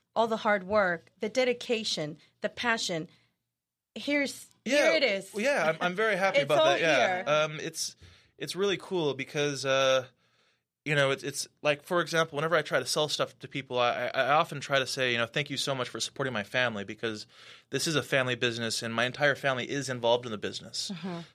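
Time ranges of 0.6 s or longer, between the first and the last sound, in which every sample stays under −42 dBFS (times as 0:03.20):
0:03.06–0:03.96
0:10.06–0:10.86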